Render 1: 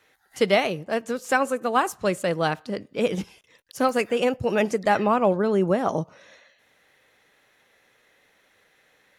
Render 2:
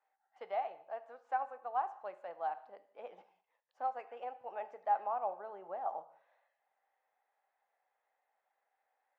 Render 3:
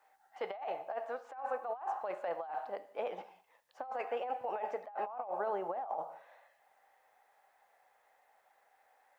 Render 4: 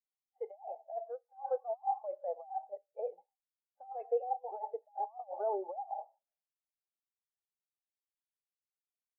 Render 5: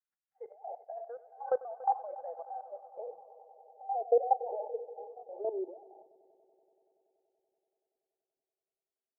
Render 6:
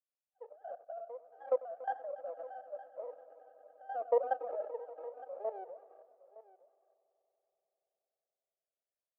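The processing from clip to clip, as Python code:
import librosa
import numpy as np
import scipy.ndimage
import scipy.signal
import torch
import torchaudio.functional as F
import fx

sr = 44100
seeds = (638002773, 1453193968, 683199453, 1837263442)

y1 = fx.ladder_bandpass(x, sr, hz=840.0, resonance_pct=70)
y1 = fx.rev_gated(y1, sr, seeds[0], gate_ms=240, shape='falling', drr_db=11.5)
y1 = y1 * librosa.db_to_amplitude(-8.5)
y2 = fx.over_compress(y1, sr, threshold_db=-46.0, ratio=-1.0)
y2 = y2 * librosa.db_to_amplitude(7.0)
y3 = fx.spectral_expand(y2, sr, expansion=2.5)
y3 = y3 * librosa.db_to_amplitude(2.0)
y4 = fx.level_steps(y3, sr, step_db=16)
y4 = fx.echo_heads(y4, sr, ms=95, heads='first and third', feedback_pct=73, wet_db=-19.5)
y4 = fx.filter_sweep_lowpass(y4, sr, from_hz=1600.0, to_hz=280.0, start_s=2.34, end_s=6.12, q=3.7)
y4 = y4 * librosa.db_to_amplitude(5.5)
y5 = fx.lower_of_two(y4, sr, delay_ms=1.6)
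y5 = fx.ladder_bandpass(y5, sr, hz=620.0, resonance_pct=55)
y5 = y5 + 10.0 ** (-18.0 / 20.0) * np.pad(y5, (int(913 * sr / 1000.0), 0))[:len(y5)]
y5 = y5 * librosa.db_to_amplitude(5.5)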